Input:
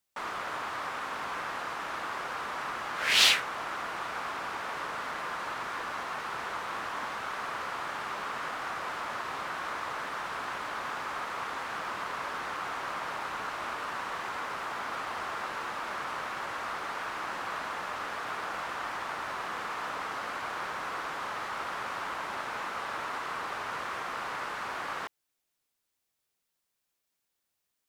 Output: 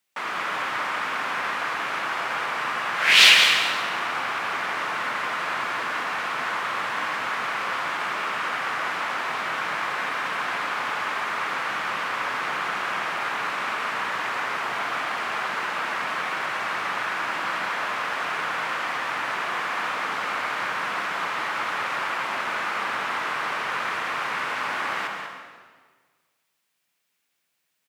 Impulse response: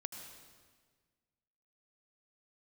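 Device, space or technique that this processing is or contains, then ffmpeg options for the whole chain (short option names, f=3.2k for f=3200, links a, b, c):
PA in a hall: -filter_complex "[0:a]highpass=f=110:w=0.5412,highpass=f=110:w=1.3066,equalizer=f=2.3k:t=o:w=1.3:g=7,aecho=1:1:190:0.355[a];[1:a]atrim=start_sample=2205[b];[a][b]afir=irnorm=-1:irlink=0,volume=7dB"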